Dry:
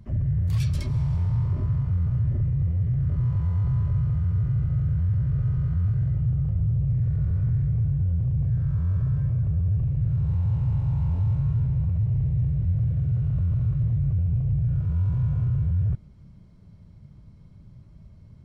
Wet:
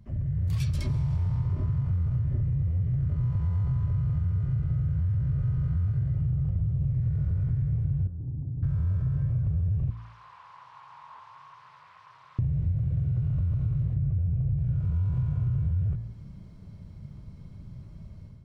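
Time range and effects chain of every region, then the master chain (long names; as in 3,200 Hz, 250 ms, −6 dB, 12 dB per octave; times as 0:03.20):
0:08.07–0:08.63: formant resonators in series u + highs frequency-modulated by the lows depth 0.21 ms
0:09.90–0:12.39: linear delta modulator 64 kbit/s, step −36.5 dBFS + four-pole ladder band-pass 1,100 Hz, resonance 80%
0:13.94–0:14.58: low-pass filter 2,100 Hz 6 dB per octave + notch filter 930 Hz, Q 5.1
whole clip: automatic gain control gain up to 10 dB; hum removal 56.72 Hz, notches 35; downward compressor, threshold −19 dBFS; level −5 dB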